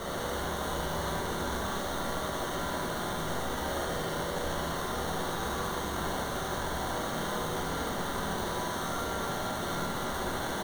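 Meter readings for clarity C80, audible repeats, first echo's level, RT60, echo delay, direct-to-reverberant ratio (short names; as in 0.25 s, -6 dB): 1.5 dB, 1, -4.5 dB, 1.5 s, 74 ms, -4.0 dB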